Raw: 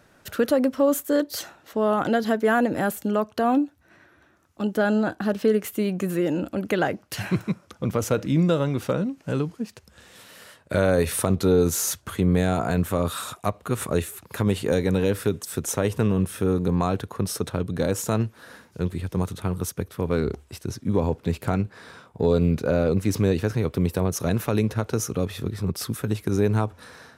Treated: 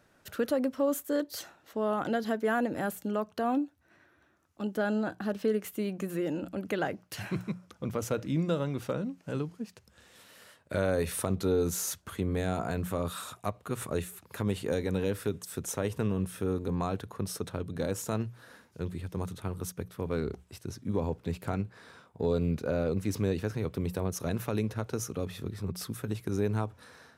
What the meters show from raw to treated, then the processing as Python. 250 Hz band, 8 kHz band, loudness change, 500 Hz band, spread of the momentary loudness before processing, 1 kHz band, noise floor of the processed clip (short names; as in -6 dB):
-8.5 dB, -8.0 dB, -8.5 dB, -8.0 dB, 8 LU, -8.0 dB, -65 dBFS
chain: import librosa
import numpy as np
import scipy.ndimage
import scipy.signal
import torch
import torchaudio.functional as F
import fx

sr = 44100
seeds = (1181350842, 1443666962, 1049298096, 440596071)

y = fx.hum_notches(x, sr, base_hz=60, count=3)
y = y * librosa.db_to_amplitude(-8.0)